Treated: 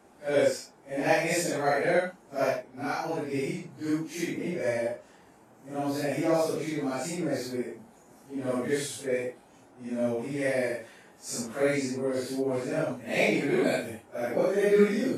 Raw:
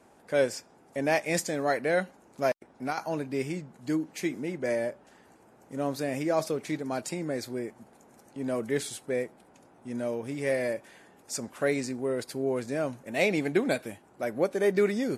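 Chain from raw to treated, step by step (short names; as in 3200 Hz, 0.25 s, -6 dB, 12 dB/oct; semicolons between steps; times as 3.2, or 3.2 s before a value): phase scrambler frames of 0.2 s; gain +1.5 dB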